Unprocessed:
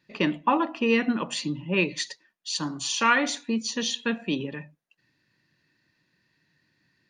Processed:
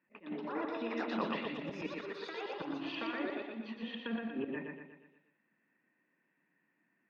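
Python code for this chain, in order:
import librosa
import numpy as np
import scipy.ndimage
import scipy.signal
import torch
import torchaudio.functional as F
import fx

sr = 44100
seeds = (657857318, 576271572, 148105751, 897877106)

p1 = fx.law_mismatch(x, sr, coded='A')
p2 = scipy.signal.sosfilt(scipy.signal.cheby1(3, 1.0, [210.0, 2400.0], 'bandpass', fs=sr, output='sos'), p1)
p3 = fx.over_compress(p2, sr, threshold_db=-33.0, ratio=-1.0)
p4 = fx.auto_swell(p3, sr, attack_ms=186.0)
p5 = fx.echo_pitch(p4, sr, ms=157, semitones=6, count=2, db_per_echo=-3.0)
p6 = fx.air_absorb(p5, sr, metres=290.0)
p7 = p6 + fx.echo_feedback(p6, sr, ms=119, feedback_pct=49, wet_db=-3.5, dry=0)
y = p7 * librosa.db_to_amplitude(-2.5)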